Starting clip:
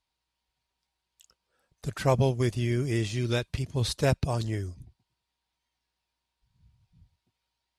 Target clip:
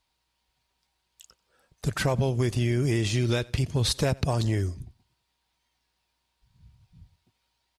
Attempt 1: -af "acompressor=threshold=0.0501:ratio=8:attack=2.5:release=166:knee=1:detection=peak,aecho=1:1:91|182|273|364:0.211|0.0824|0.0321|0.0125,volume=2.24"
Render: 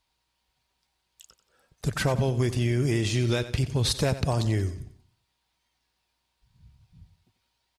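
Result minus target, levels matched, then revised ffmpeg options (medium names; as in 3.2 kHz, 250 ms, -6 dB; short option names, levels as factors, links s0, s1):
echo-to-direct +10.5 dB
-af "acompressor=threshold=0.0501:ratio=8:attack=2.5:release=166:knee=1:detection=peak,aecho=1:1:91|182:0.0631|0.0246,volume=2.24"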